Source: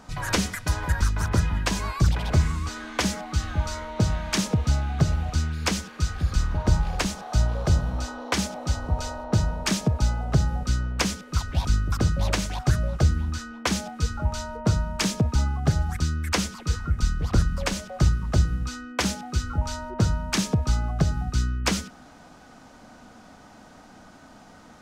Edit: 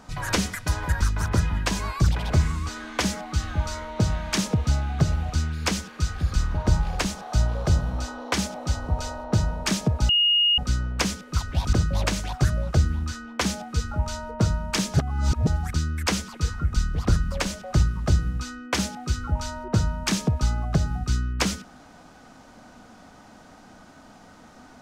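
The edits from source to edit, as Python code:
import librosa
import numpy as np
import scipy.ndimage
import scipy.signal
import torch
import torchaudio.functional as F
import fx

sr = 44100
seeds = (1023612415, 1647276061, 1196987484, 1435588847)

y = fx.edit(x, sr, fx.bleep(start_s=10.09, length_s=0.49, hz=2860.0, db=-16.5),
    fx.cut(start_s=11.73, length_s=0.26),
    fx.reverse_span(start_s=15.2, length_s=0.53), tone=tone)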